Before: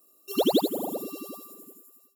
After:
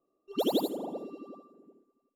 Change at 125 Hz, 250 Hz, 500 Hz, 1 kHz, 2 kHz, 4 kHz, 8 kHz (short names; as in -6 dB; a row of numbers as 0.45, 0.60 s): -5.0, -5.0, -5.0, -5.0, -8.0, -5.5, -9.0 dB